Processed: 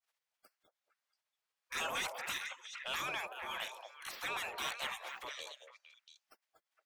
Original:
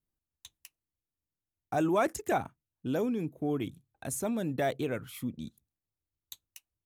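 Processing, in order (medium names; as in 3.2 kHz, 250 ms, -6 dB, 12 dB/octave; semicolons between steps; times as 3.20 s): spectral gate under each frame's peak -30 dB weak; repeats whose band climbs or falls 229 ms, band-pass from 680 Hz, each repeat 1.4 oct, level -4.5 dB; overdrive pedal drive 18 dB, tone 2.2 kHz, clips at -32.5 dBFS; trim +8.5 dB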